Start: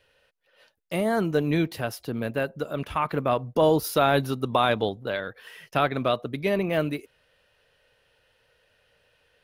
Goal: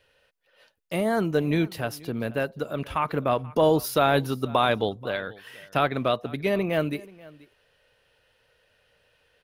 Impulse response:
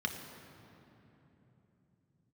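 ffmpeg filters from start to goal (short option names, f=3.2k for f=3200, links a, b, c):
-af "aecho=1:1:483:0.0794"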